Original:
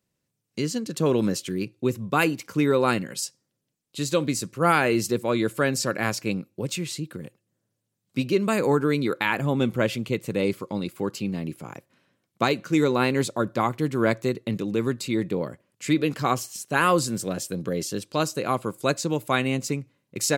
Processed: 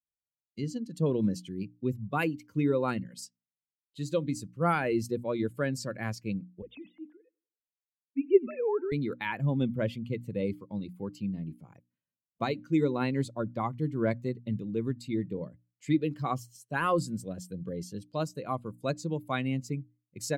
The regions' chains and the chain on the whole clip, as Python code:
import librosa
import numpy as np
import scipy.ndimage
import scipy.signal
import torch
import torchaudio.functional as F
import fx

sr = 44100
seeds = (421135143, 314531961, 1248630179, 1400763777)

y = fx.chain(x, sr, fx.sine_speech(),
    fx.echo_feedback(ms=91, feedback_pct=54, wet_db=-19), at=(6.62, 8.92))
y = fx.bin_expand(y, sr, power=1.5)
y = fx.tilt_eq(y, sr, slope=-2.0)
y = fx.hum_notches(y, sr, base_hz=60, count=5)
y = y * 10.0 ** (-5.5 / 20.0)